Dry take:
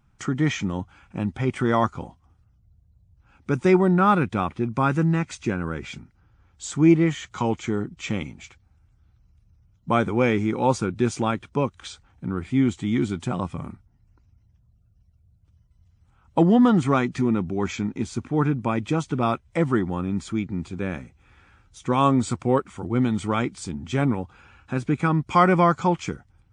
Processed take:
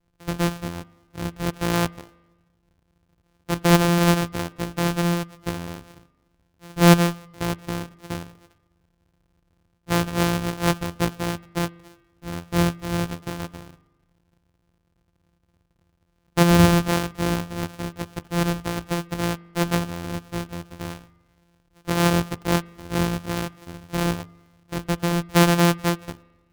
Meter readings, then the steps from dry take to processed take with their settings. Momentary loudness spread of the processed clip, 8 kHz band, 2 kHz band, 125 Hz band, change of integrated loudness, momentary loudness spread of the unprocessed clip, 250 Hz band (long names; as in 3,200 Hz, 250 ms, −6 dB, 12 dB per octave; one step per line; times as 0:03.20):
17 LU, +7.0 dB, +2.5 dB, +1.5 dB, 0.0 dB, 15 LU, −1.5 dB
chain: samples sorted by size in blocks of 256 samples
spring reverb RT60 1.2 s, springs 41 ms, chirp 50 ms, DRR 14.5 dB
expander for the loud parts 1.5 to 1, over −34 dBFS
level +2.5 dB